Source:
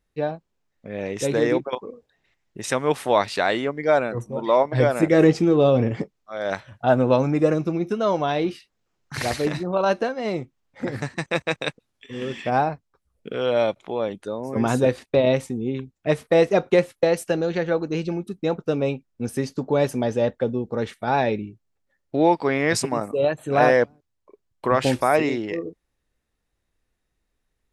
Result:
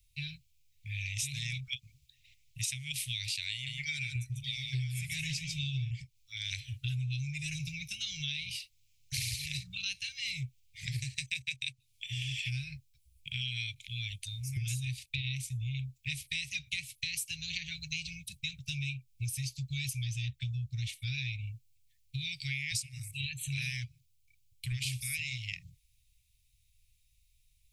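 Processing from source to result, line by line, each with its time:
3.52–5.91 s: delay 145 ms -7 dB
whole clip: Chebyshev band-stop 130–2300 Hz, order 5; treble shelf 7.8 kHz +8 dB; compression 8:1, threshold -40 dBFS; trim +7 dB

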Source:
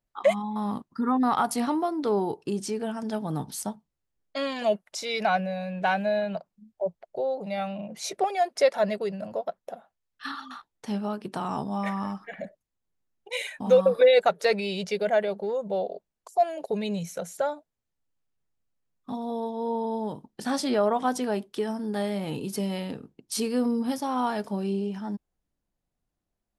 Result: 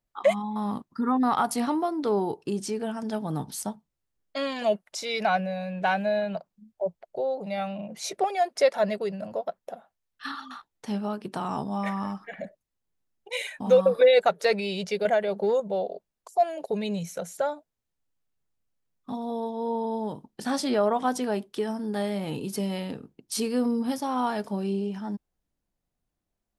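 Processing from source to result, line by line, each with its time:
15.05–15.60 s: three bands compressed up and down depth 100%

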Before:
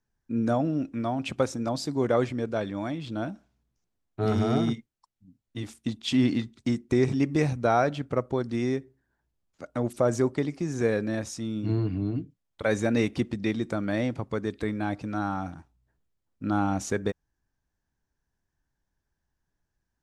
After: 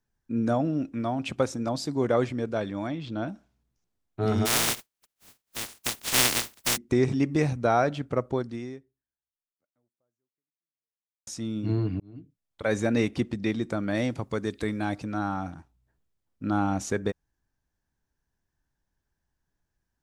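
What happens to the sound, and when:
2.87–3.28 s: low-pass 5.9 kHz
4.45–6.76 s: spectral contrast reduction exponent 0.14
8.37–11.27 s: fade out exponential
12.00–12.77 s: fade in
13.95–15.04 s: treble shelf 4 kHz +8.5 dB

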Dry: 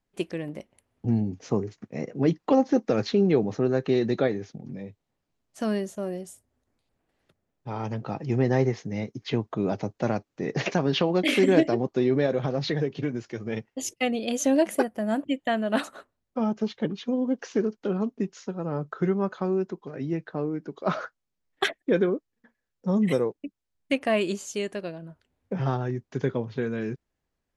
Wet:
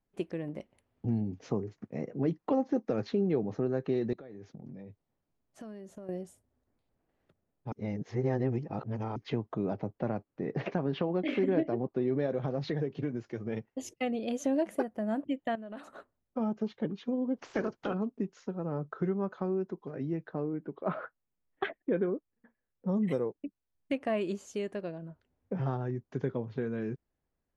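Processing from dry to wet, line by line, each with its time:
0.57–1.52 s: peaking EQ 3.5 kHz +5 dB 1.7 oct
4.13–6.09 s: compression 12:1, threshold -39 dBFS
7.72–9.16 s: reverse
9.73–12.08 s: distance through air 180 m
15.55–15.95 s: compression 4:1, threshold -39 dBFS
17.36–17.93 s: spectral peaks clipped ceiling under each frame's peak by 21 dB
20.53–22.89 s: low-pass 3.1 kHz 24 dB/octave
whole clip: treble shelf 2.4 kHz -12 dB; compression 1.5:1, threshold -32 dBFS; trim -2 dB

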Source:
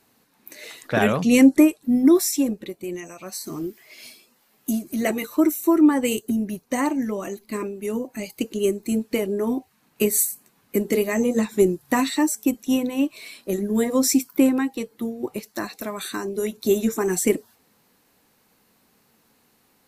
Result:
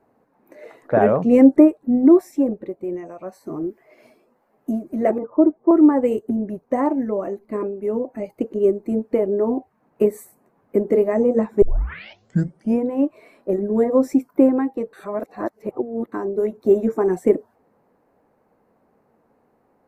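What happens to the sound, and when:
5.18–5.71 s: low-pass 1.1 kHz 24 dB/octave
11.62 s: tape start 1.25 s
14.93–16.12 s: reverse
whole clip: FFT filter 210 Hz 0 dB, 610 Hz +8 dB, 2 kHz -8 dB, 3.4 kHz -23 dB

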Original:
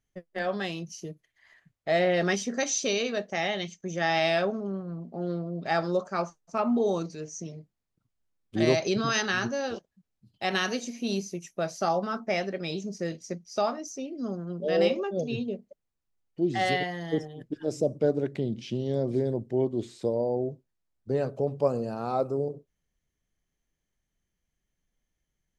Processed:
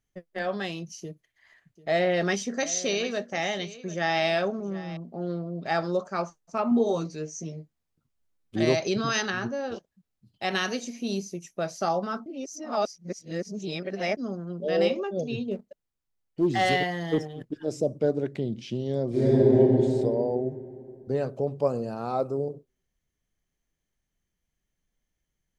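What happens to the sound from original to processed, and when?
1.01–4.97 s: delay 742 ms -17 dB
6.70–8.56 s: doubling 13 ms -4.5 dB
9.30–9.72 s: treble shelf 2.5 kHz -11.5 dB
10.97–11.56 s: dynamic bell 1.8 kHz, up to -4 dB, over -49 dBFS, Q 0.72
12.26–14.17 s: reverse
15.51–17.51 s: waveshaping leveller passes 1
19.09–19.58 s: reverb throw, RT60 2.8 s, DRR -10 dB

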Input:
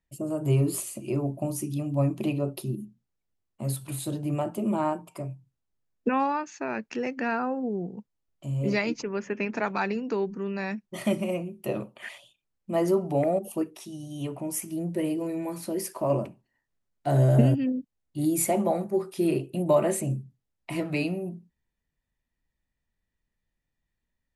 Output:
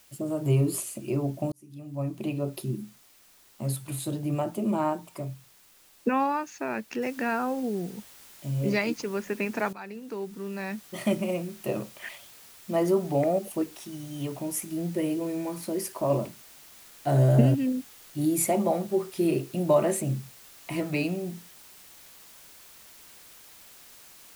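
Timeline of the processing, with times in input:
1.52–2.63 s: fade in
7.02 s: noise floor step -58 dB -51 dB
9.73–11.02 s: fade in, from -16 dB

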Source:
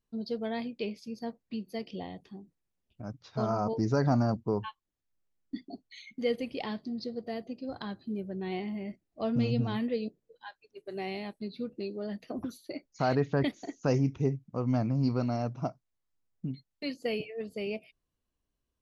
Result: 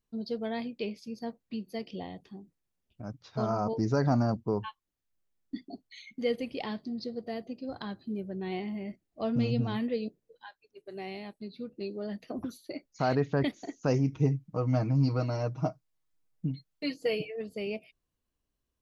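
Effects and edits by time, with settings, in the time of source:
10.46–11.81 s: gain -3.5 dB
14.12–17.36 s: comb 6.4 ms, depth 75%

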